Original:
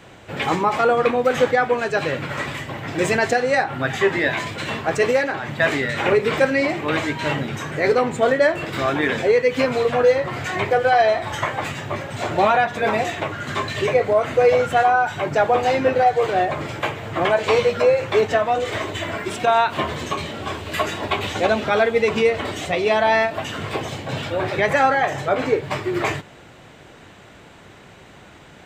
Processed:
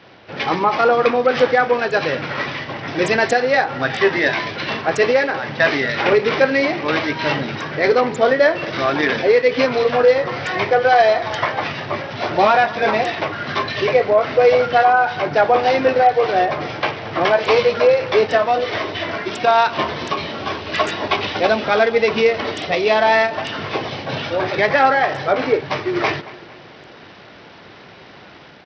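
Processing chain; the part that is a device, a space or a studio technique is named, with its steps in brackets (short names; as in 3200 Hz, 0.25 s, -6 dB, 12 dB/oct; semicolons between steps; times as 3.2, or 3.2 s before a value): tape echo 0.226 s, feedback 51%, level -18 dB, low-pass 3600 Hz; Bluetooth headset (HPF 190 Hz 6 dB/oct; AGC gain up to 4.5 dB; downsampling 16000 Hz; SBC 64 kbps 44100 Hz)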